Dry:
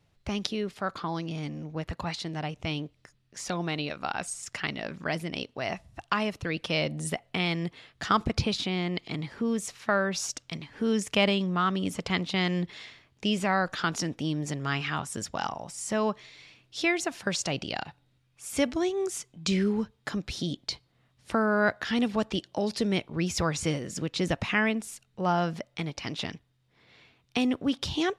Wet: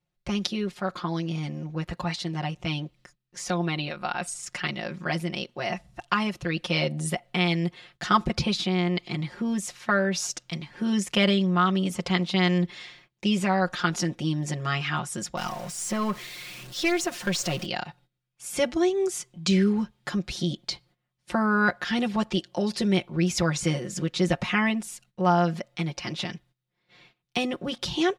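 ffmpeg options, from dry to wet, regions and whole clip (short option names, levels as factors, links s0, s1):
-filter_complex "[0:a]asettb=1/sr,asplit=3[s0][s1][s2];[s0]atrim=end=3.584[s3];[s1]atrim=start=3.58:end=4.27,asetpts=PTS-STARTPTS,afade=t=in:d=0.004:c=qsin,afade=t=out:st=0.686:d=0.004:c=qsin,equalizer=f=6600:t=o:w=0.4:g=-12,bandreject=f=6200:w=20[s4];[s2]atrim=start=4.266[s5];[s3][s4]acrossfade=d=0.004:c1=hsin:c2=qsin[s6];[s6][s5]acrossfade=d=0.004:c1=qsin:c2=hsin,asettb=1/sr,asplit=3[s7][s8][s9];[s7]atrim=end=15.374[s10];[s8]atrim=start=15.37:end=17.66,asetpts=PTS-STARTPTS,afade=t=in:d=0.004:c=qsin,afade=t=out:st=2.286:d=0.004:c=qsin,aeval=exprs='val(0)+0.5*0.0119*sgn(val(0))':c=same,bandreject=f=850:w=10,aeval=exprs='(tanh(10*val(0)+0.35)-tanh(0.35))/10':c=same[s11];[s9]atrim=start=17.656[s12];[s10][s11]acrossfade=d=0.004:c1=hsin:c2=qsin[s13];[s13][s12]acrossfade=d=0.004:c1=qsin:c2=hsin,agate=range=0.158:threshold=0.00126:ratio=16:detection=peak,aecho=1:1:5.6:0.88"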